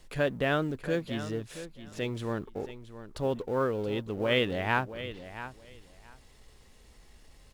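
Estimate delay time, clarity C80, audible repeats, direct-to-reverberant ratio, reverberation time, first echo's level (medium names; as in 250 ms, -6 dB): 675 ms, no reverb, 2, no reverb, no reverb, -13.0 dB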